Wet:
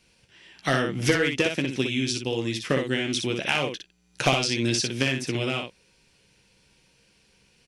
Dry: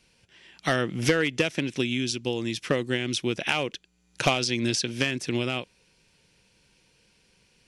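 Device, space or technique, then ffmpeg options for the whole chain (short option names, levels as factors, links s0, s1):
slapback doubling: -filter_complex "[0:a]asplit=3[s0][s1][s2];[s1]adelay=15,volume=0.376[s3];[s2]adelay=60,volume=0.562[s4];[s0][s3][s4]amix=inputs=3:normalize=0"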